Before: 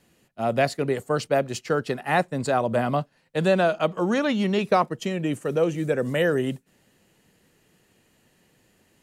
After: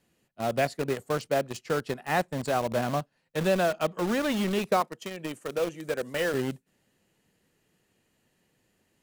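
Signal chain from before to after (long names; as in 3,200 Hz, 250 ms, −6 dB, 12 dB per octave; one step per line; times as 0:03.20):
0:04.80–0:06.34: high-pass filter 370 Hz 6 dB per octave
in parallel at −4.5 dB: bit reduction 4 bits
on the sum: level −8.5 dB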